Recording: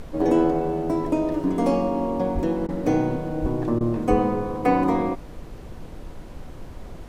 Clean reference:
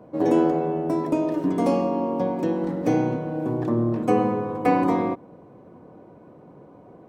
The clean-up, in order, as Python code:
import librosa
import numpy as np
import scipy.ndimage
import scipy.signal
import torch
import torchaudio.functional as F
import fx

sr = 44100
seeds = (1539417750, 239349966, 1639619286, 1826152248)

y = fx.highpass(x, sr, hz=140.0, slope=24, at=(2.34, 2.46), fade=0.02)
y = fx.highpass(y, sr, hz=140.0, slope=24, at=(3.41, 3.53), fade=0.02)
y = fx.highpass(y, sr, hz=140.0, slope=24, at=(4.09, 4.21), fade=0.02)
y = fx.fix_interpolate(y, sr, at_s=(2.67, 3.79), length_ms=16.0)
y = fx.noise_reduce(y, sr, print_start_s=5.2, print_end_s=5.7, reduce_db=10.0)